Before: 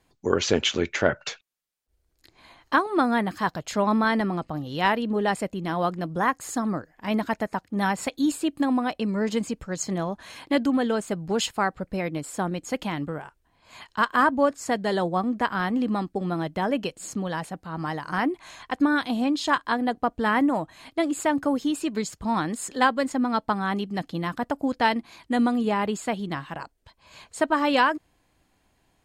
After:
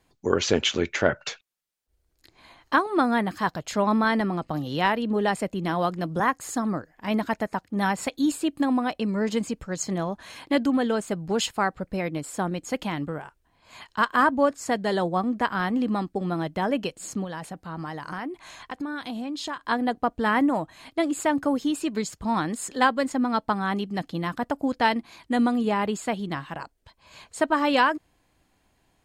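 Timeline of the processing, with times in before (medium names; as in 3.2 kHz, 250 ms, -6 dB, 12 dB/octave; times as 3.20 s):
4.50–6.20 s: three bands compressed up and down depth 40%
17.24–19.69 s: compression 4:1, threshold -30 dBFS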